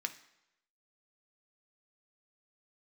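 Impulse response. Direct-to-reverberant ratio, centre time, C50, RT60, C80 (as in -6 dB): 6.0 dB, 7 ms, 13.5 dB, 0.85 s, 17.0 dB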